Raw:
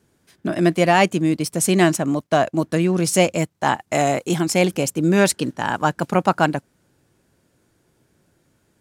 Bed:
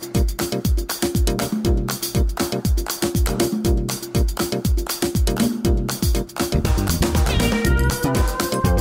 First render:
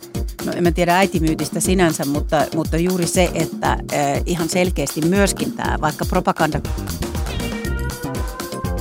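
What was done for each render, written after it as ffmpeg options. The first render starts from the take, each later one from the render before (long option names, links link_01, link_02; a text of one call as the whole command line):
ffmpeg -i in.wav -i bed.wav -filter_complex "[1:a]volume=-5.5dB[link_01];[0:a][link_01]amix=inputs=2:normalize=0" out.wav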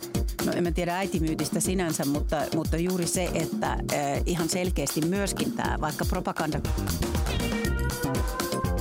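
ffmpeg -i in.wav -af "alimiter=limit=-10.5dB:level=0:latency=1:release=33,acompressor=threshold=-23dB:ratio=6" out.wav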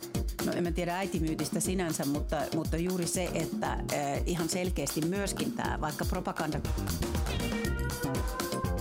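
ffmpeg -i in.wav -af "flanger=delay=6.5:depth=7:regen=-88:speed=0.37:shape=triangular" out.wav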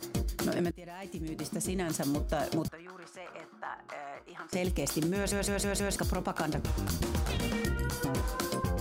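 ffmpeg -i in.wav -filter_complex "[0:a]asettb=1/sr,asplit=3[link_01][link_02][link_03];[link_01]atrim=end=2.684[link_04];[link_02]atrim=start=2.68:end=4.53,asetpts=PTS-STARTPTS,afade=type=in:duration=0.004:curve=qsin,afade=type=out:start_time=1.846:duration=0.004:curve=qsin,bandpass=frequency=1300:width_type=q:width=2.3[link_05];[link_03]atrim=start=4.526[link_06];[link_04][link_05]acrossfade=duration=0.004:curve1=hsin:curve2=qsin[link_07];[link_07][link_06]acrossfade=duration=0.004:curve1=qsin:curve2=hsin,asplit=7[link_08][link_09][link_10][link_11][link_12][link_13][link_14];[link_08]atrim=end=0.71,asetpts=PTS-STARTPTS,afade=type=out:start_time=0.706:duration=0.004:curve=hsin:silence=0.1[link_15];[link_09]atrim=start=0.71:end=5.322,asetpts=PTS-STARTPTS,afade=type=in:duration=1.43:silence=0.1[link_16];[link_10]atrim=start=5.158:end=5.322[link_17];[link_11]atrim=start=5.158:end=5.322[link_18];[link_12]atrim=start=5.158:end=5.322[link_19];[link_13]atrim=start=5.158:end=5.322[link_20];[link_14]atrim=start=5.958[link_21];[link_15][link_16]concat=n=2:v=0:a=1[link_22];[link_22][link_17]acrossfade=duration=0.004:curve1=hsin:curve2=hsin[link_23];[link_23][link_18]acrossfade=duration=0.004:curve1=hsin:curve2=hsin[link_24];[link_24][link_19]acrossfade=duration=0.004:curve1=hsin:curve2=hsin[link_25];[link_25][link_20]acrossfade=duration=0.004:curve1=hsin:curve2=hsin[link_26];[link_26][link_21]acrossfade=duration=0.004:curve1=hsin:curve2=hsin" out.wav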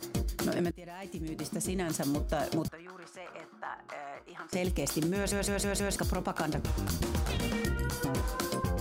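ffmpeg -i in.wav -af anull out.wav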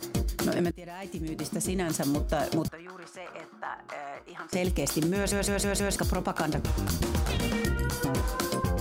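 ffmpeg -i in.wav -af "volume=3.5dB" out.wav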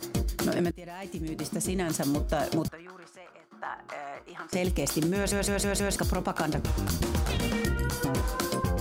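ffmpeg -i in.wav -filter_complex "[0:a]asplit=2[link_01][link_02];[link_01]atrim=end=3.51,asetpts=PTS-STARTPTS,afade=type=out:start_time=2.66:duration=0.85:silence=0.158489[link_03];[link_02]atrim=start=3.51,asetpts=PTS-STARTPTS,afade=type=in:duration=0.004:curve=hsin:silence=0.158489[link_04];[link_03][link_04]concat=n=2:v=0:a=1" out.wav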